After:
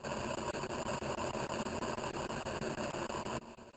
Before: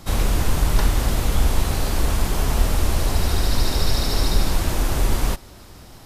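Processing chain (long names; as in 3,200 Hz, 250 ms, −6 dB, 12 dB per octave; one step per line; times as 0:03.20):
sub-octave generator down 1 octave, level −5 dB
source passing by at 0:01.89, 23 m/s, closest 12 metres
first-order pre-emphasis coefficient 0.97
mains-hum notches 50/100/150/200/250/300/350/400/450/500 Hz
decimation without filtering 35×
EQ curve with evenly spaced ripples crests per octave 1.4, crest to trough 15 dB
reversed playback
downward compressor 16 to 1, threshold −46 dBFS, peak gain reduction 20.5 dB
reversed playback
high-pass filter 54 Hz 12 dB per octave
spring reverb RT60 3.5 s, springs 42 ms, chirp 45 ms, DRR 13.5 dB
change of speed 1.61×
regular buffer underruns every 0.16 s, samples 1,024, zero, from 0:00.35
level +13.5 dB
Opus 10 kbit/s 48,000 Hz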